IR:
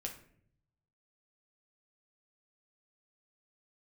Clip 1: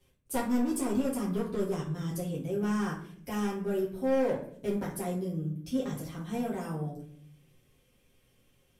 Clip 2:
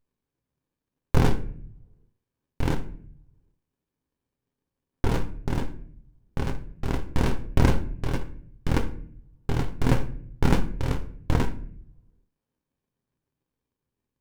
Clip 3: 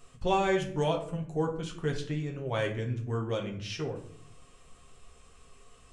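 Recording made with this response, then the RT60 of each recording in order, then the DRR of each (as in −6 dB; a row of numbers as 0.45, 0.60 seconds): 3; 0.60, 0.65, 0.60 seconds; −7.0, 7.0, 0.5 decibels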